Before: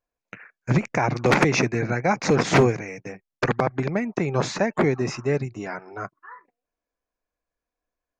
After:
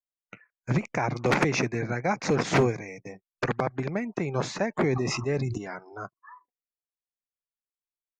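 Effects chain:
noise reduction from a noise print of the clip's start 20 dB
0:04.77–0:05.58: level that may fall only so fast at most 25 dB per second
level −5 dB

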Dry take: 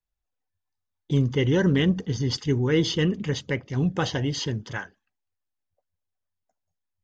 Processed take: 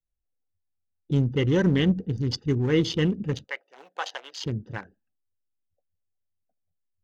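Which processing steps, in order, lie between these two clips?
adaptive Wiener filter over 41 samples
0:03.44–0:04.44: high-pass filter 690 Hz 24 dB per octave
on a send: convolution reverb, pre-delay 4 ms, DRR 21 dB

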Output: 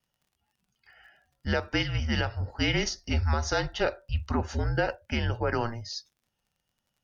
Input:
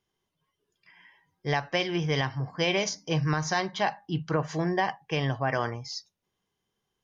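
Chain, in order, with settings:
frequency shifter −230 Hz
surface crackle 49 per second −56 dBFS
pitch vibrato 1.2 Hz 25 cents

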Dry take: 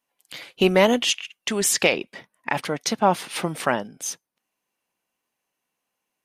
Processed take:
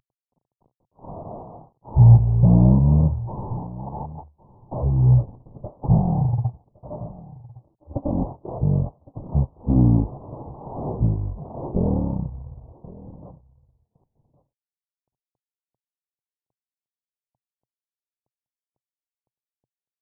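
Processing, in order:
variable-slope delta modulation 16 kbit/s
parametric band 400 Hz +10.5 dB 0.62 octaves
in parallel at −1.5 dB: downward compressor, threshold −29 dBFS, peak gain reduction 20 dB
on the sum: change of speed 0.312×
single-tap delay 1,112 ms −20.5 dB
level −1 dB

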